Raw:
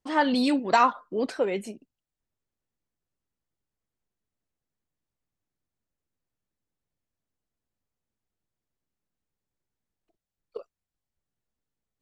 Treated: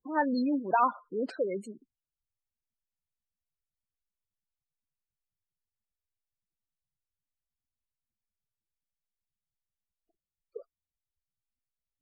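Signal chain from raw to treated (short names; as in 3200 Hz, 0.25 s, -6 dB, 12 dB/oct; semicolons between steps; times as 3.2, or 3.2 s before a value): spectral gate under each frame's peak -15 dB strong; gain -4.5 dB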